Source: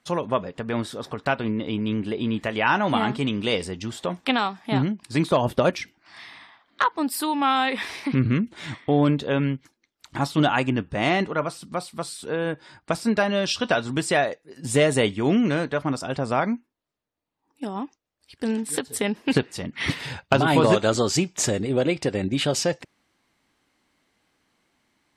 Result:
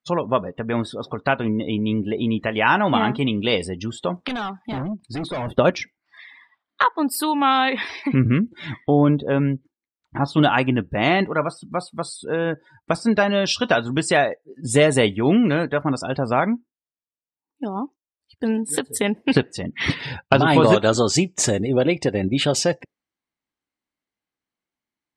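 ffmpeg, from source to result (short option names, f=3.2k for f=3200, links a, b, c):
-filter_complex "[0:a]asettb=1/sr,asplit=3[a][b][c];[a]atrim=end=4.284[d];[b]atrim=start=4.28:end=5.53,asetpts=PTS-STARTPTS,afade=t=in:d=0.004:c=qsin,afade=t=out:st=1.246:d=0.004:c=qsin,volume=28dB,asoftclip=hard,volume=-28dB[e];[c]atrim=start=5.526[f];[d][e]acrossfade=d=0.004:c1=hsin:c2=qsin[g];[g][f]acrossfade=d=0.004:c1=qsin:c2=hsin,asettb=1/sr,asplit=3[h][i][j];[h]atrim=end=8.904[k];[i]atrim=start=8.9:end=10.28,asetpts=PTS-STARTPTS,afade=t=in:d=0.004:c=qsin,afade=t=out:st=1.376:d=0.004:c=qsin,lowpass=f=1.8k:p=1[l];[j]atrim=start=10.276[m];[k][l]acrossfade=d=0.004:c1=hsin:c2=qsin[n];[n][m]acrossfade=d=0.004:c1=qsin:c2=hsin,afftdn=nr=24:nf=-40,volume=3.5dB"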